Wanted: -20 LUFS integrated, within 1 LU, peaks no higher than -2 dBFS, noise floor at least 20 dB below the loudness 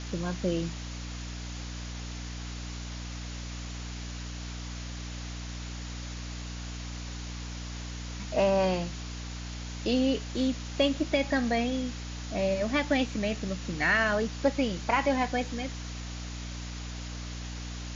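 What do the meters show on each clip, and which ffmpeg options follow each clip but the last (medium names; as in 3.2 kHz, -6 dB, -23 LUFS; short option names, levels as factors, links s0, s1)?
hum 60 Hz; highest harmonic 300 Hz; hum level -36 dBFS; noise floor -38 dBFS; noise floor target -52 dBFS; loudness -32.0 LUFS; peak level -13.0 dBFS; loudness target -20.0 LUFS
-> -af "bandreject=f=60:t=h:w=6,bandreject=f=120:t=h:w=6,bandreject=f=180:t=h:w=6,bandreject=f=240:t=h:w=6,bandreject=f=300:t=h:w=6"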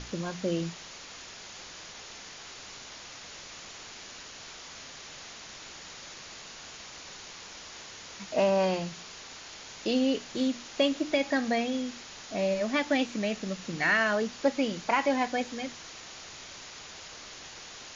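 hum not found; noise floor -46 dBFS; noise floor target -49 dBFS
-> -af "afftdn=nr=6:nf=-46"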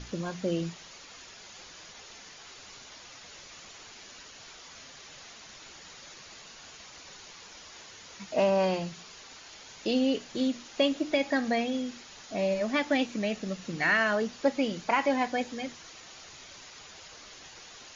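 noise floor -50 dBFS; loudness -29.0 LUFS; peak level -13.5 dBFS; loudness target -20.0 LUFS
-> -af "volume=2.82"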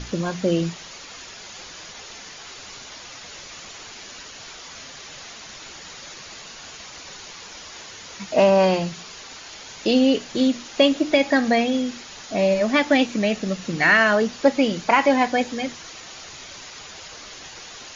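loudness -20.0 LUFS; peak level -4.5 dBFS; noise floor -41 dBFS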